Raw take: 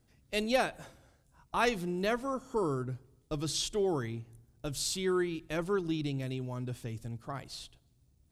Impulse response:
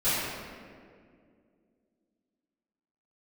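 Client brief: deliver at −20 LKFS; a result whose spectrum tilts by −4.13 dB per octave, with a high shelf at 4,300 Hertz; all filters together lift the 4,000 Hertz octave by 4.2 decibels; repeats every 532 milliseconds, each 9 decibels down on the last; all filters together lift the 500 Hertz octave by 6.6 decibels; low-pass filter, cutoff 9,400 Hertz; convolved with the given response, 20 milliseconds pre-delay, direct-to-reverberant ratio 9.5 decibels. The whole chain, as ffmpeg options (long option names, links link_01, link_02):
-filter_complex "[0:a]lowpass=9400,equalizer=frequency=500:width_type=o:gain=8.5,equalizer=frequency=4000:width_type=o:gain=8.5,highshelf=frequency=4300:gain=-6.5,aecho=1:1:532|1064|1596|2128:0.355|0.124|0.0435|0.0152,asplit=2[link_01][link_02];[1:a]atrim=start_sample=2205,adelay=20[link_03];[link_02][link_03]afir=irnorm=-1:irlink=0,volume=-23dB[link_04];[link_01][link_04]amix=inputs=2:normalize=0,volume=9dB"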